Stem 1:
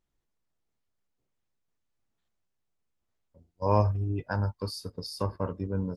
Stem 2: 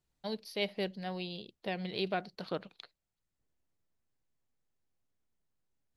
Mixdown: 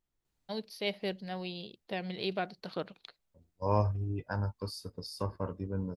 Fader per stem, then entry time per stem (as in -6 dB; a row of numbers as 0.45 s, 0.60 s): -4.5 dB, 0.0 dB; 0.00 s, 0.25 s